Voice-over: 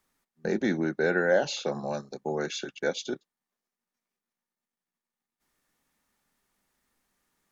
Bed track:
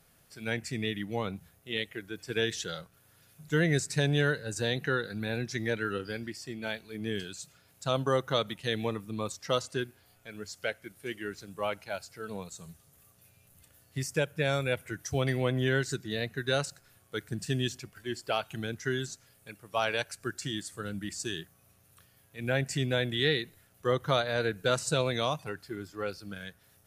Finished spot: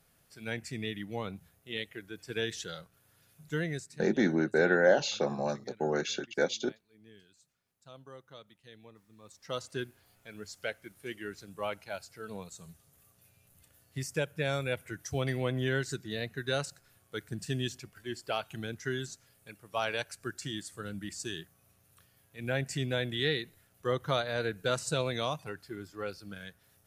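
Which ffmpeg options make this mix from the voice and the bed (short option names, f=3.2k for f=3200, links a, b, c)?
-filter_complex "[0:a]adelay=3550,volume=0dB[a];[1:a]volume=15.5dB,afade=t=out:st=3.43:d=0.57:silence=0.11885,afade=t=in:st=9.22:d=0.62:silence=0.105925[b];[a][b]amix=inputs=2:normalize=0"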